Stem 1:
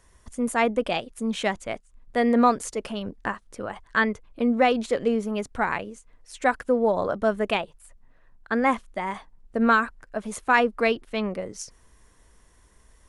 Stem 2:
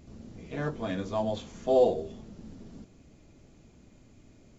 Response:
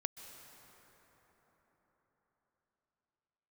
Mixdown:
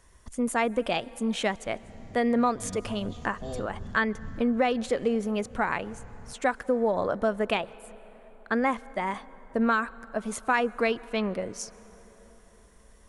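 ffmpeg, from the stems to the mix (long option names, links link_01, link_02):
-filter_complex "[0:a]acompressor=threshold=-22dB:ratio=2.5,volume=-2dB,asplit=3[link_01][link_02][link_03];[link_02]volume=-10.5dB[link_04];[1:a]asubboost=boost=8.5:cutoff=160,acrossover=split=190|3000[link_05][link_06][link_07];[link_06]acompressor=threshold=-36dB:ratio=6[link_08];[link_05][link_08][link_07]amix=inputs=3:normalize=0,adelay=1750,volume=-2dB[link_09];[link_03]apad=whole_len=279447[link_10];[link_09][link_10]sidechaincompress=threshold=-40dB:ratio=8:attack=44:release=171[link_11];[2:a]atrim=start_sample=2205[link_12];[link_04][link_12]afir=irnorm=-1:irlink=0[link_13];[link_01][link_11][link_13]amix=inputs=3:normalize=0"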